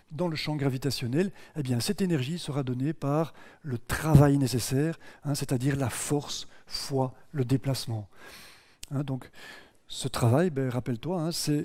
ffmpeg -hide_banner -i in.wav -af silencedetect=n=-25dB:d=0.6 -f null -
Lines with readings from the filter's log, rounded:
silence_start: 7.96
silence_end: 8.83 | silence_duration: 0.87
silence_start: 9.15
silence_end: 10.01 | silence_duration: 0.85